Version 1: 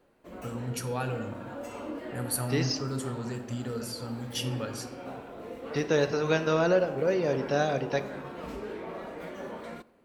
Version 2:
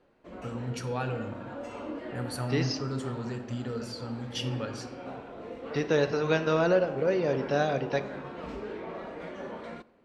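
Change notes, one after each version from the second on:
master: add LPF 5300 Hz 12 dB/oct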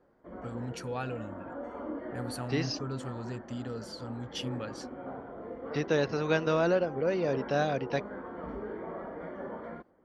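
background: add polynomial smoothing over 41 samples; reverb: off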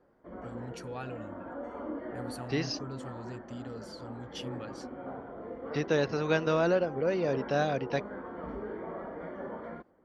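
first voice -4.5 dB

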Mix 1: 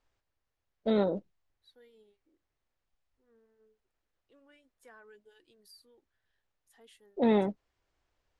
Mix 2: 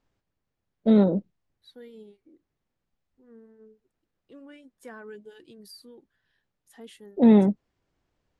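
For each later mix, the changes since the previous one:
second voice +9.0 dB; master: add bell 190 Hz +12.5 dB 1.9 oct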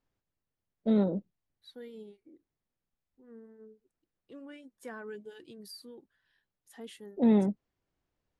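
first voice -7.5 dB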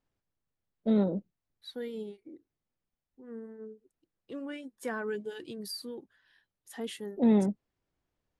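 second voice +8.0 dB

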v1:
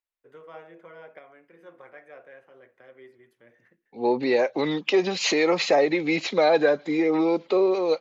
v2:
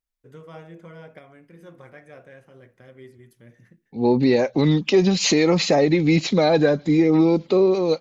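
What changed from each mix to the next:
second voice: add high shelf 4000 Hz -9 dB; master: remove three-band isolator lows -20 dB, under 350 Hz, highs -15 dB, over 3100 Hz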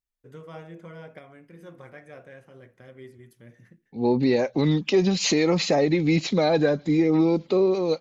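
second voice -3.5 dB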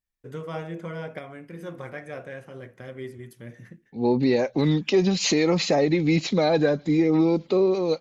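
first voice +8.0 dB

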